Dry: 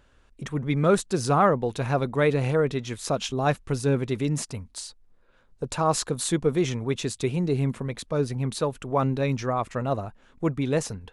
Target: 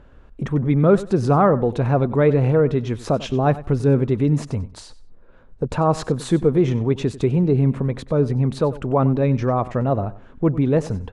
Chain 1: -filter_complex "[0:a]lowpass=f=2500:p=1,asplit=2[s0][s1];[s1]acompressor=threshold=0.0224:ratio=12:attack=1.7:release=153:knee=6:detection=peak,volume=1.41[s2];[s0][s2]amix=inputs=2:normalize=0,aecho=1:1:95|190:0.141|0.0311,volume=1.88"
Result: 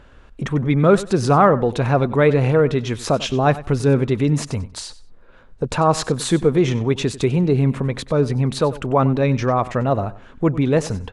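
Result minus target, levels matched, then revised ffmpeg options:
2 kHz band +5.5 dB
-filter_complex "[0:a]lowpass=f=700:p=1,asplit=2[s0][s1];[s1]acompressor=threshold=0.0224:ratio=12:attack=1.7:release=153:knee=6:detection=peak,volume=1.41[s2];[s0][s2]amix=inputs=2:normalize=0,aecho=1:1:95|190:0.141|0.0311,volume=1.88"

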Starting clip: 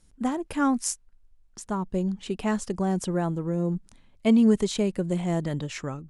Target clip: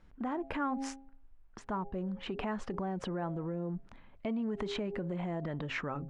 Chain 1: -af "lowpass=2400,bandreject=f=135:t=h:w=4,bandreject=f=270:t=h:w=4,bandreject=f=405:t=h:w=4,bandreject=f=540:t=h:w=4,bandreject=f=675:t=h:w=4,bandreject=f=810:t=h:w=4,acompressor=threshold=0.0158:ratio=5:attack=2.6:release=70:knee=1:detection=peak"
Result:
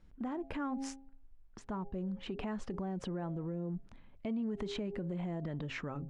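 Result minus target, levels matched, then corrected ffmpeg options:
1 kHz band -4.0 dB
-af "lowpass=2400,bandreject=f=135:t=h:w=4,bandreject=f=270:t=h:w=4,bandreject=f=405:t=h:w=4,bandreject=f=540:t=h:w=4,bandreject=f=675:t=h:w=4,bandreject=f=810:t=h:w=4,acompressor=threshold=0.0158:ratio=5:attack=2.6:release=70:knee=1:detection=peak,equalizer=f=1200:t=o:w=2.8:g=7"

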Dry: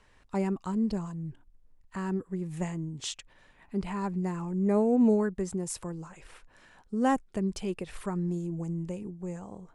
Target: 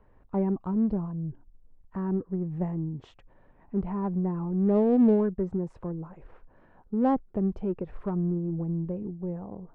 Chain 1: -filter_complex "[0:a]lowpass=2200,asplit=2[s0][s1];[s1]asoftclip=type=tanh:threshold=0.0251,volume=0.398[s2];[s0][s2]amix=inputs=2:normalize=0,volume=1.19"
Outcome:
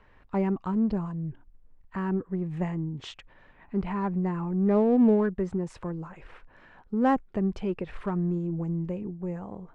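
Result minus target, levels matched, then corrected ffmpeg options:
2 kHz band +10.5 dB
-filter_complex "[0:a]lowpass=810,asplit=2[s0][s1];[s1]asoftclip=type=tanh:threshold=0.0251,volume=0.398[s2];[s0][s2]amix=inputs=2:normalize=0,volume=1.19"

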